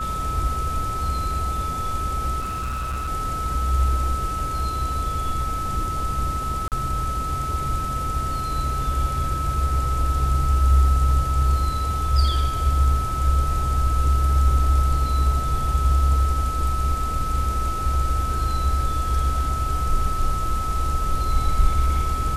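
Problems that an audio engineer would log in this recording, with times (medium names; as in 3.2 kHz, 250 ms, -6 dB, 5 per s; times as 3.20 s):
whine 1.3 kHz -26 dBFS
2.39–3.09 s: clipped -23.5 dBFS
6.68–6.72 s: dropout 38 ms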